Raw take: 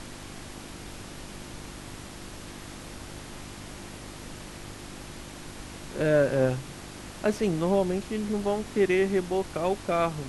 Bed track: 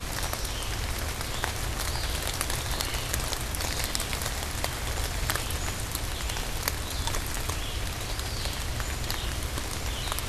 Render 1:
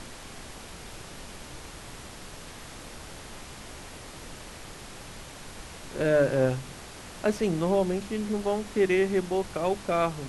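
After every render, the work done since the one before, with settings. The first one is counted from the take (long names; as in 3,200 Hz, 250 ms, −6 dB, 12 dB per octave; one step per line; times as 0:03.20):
hum removal 50 Hz, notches 7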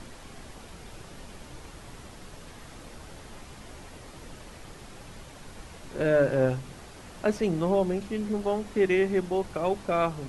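broadband denoise 6 dB, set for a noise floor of −44 dBFS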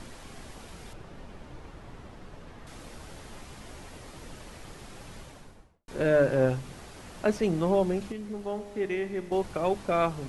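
0:00.93–0:02.67: low-pass filter 1,700 Hz 6 dB per octave
0:05.16–0:05.88: fade out and dull
0:08.12–0:09.32: tuned comb filter 51 Hz, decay 2 s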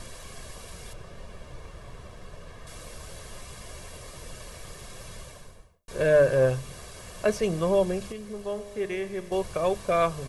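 high-shelf EQ 5,500 Hz +8 dB
comb filter 1.8 ms, depth 58%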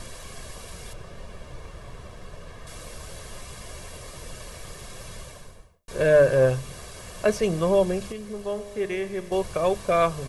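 level +2.5 dB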